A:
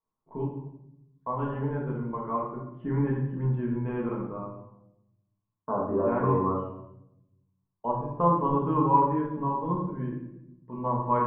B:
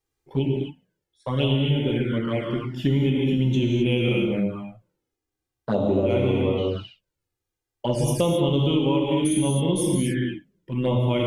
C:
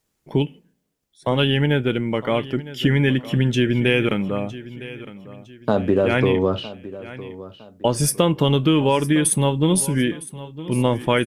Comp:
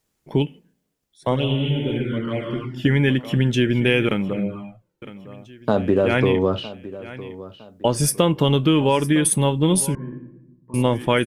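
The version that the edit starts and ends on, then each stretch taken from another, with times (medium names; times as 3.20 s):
C
1.36–2.85 s: from B
4.33–5.02 s: from B
9.95–10.74 s: from A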